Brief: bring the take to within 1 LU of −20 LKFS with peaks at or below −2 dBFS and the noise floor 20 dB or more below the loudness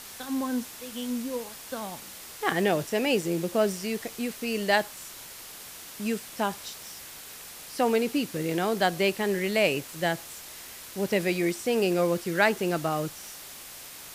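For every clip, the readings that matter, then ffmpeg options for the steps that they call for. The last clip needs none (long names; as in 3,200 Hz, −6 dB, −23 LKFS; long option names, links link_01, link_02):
background noise floor −44 dBFS; target noise floor −48 dBFS; integrated loudness −28.0 LKFS; sample peak −7.0 dBFS; target loudness −20.0 LKFS
→ -af "afftdn=noise_reduction=6:noise_floor=-44"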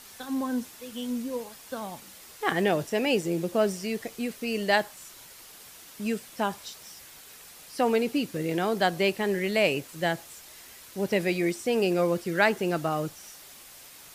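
background noise floor −49 dBFS; integrated loudness −28.0 LKFS; sample peak −7.0 dBFS; target loudness −20.0 LKFS
→ -af "volume=8dB,alimiter=limit=-2dB:level=0:latency=1"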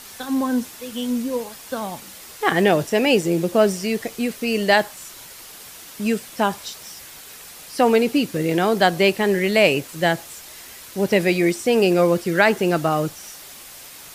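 integrated loudness −20.0 LKFS; sample peak −2.0 dBFS; background noise floor −41 dBFS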